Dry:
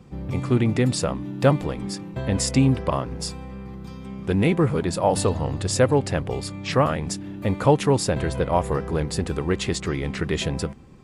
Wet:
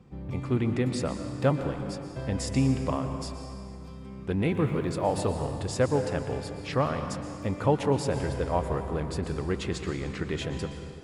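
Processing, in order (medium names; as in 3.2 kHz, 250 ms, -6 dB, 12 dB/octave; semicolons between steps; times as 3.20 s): treble shelf 4.9 kHz -7 dB; 4.50–5.32 s: crackle 360 per s -45 dBFS; plate-style reverb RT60 2.2 s, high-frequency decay 0.85×, pre-delay 105 ms, DRR 7 dB; trim -6.5 dB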